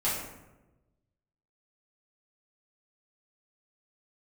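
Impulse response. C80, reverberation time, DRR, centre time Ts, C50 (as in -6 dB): 5.0 dB, 1.0 s, -9.0 dB, 58 ms, 2.0 dB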